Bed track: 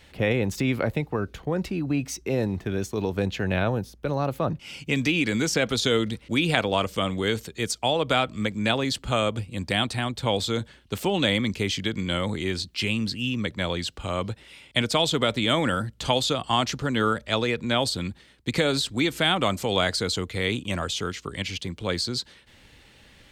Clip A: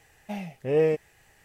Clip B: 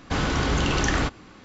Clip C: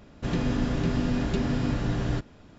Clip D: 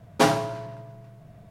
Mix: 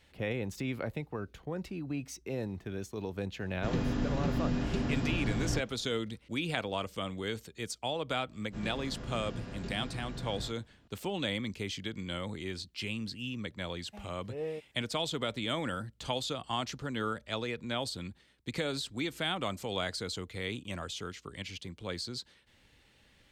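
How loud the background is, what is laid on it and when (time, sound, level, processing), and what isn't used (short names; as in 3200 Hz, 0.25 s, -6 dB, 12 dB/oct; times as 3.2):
bed track -11 dB
3.4 add C -5.5 dB
8.3 add C -15.5 dB + doubler 22 ms -3 dB
13.64 add A -15.5 dB
not used: B, D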